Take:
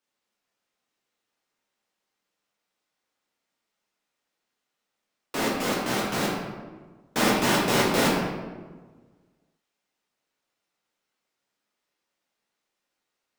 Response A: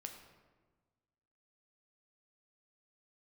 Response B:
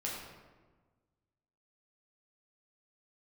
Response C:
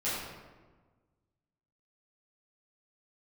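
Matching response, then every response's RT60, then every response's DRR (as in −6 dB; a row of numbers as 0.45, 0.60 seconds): B; 1.4, 1.4, 1.4 seconds; 3.5, −5.0, −12.0 decibels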